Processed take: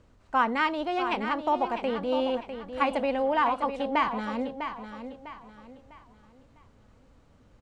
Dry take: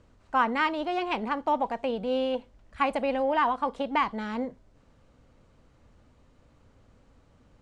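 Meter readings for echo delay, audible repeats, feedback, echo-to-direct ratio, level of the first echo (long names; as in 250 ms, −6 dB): 651 ms, 3, 35%, −8.5 dB, −9.0 dB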